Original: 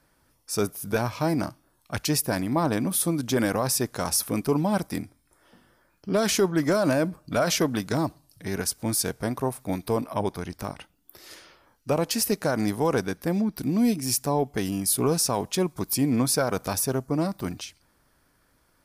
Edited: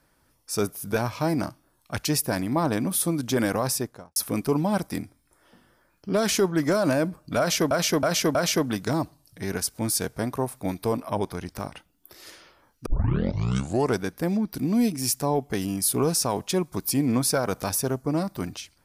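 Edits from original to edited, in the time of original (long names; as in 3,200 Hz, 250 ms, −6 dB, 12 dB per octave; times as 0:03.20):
0:03.66–0:04.16: fade out and dull
0:07.39–0:07.71: repeat, 4 plays
0:11.90: tape start 1.12 s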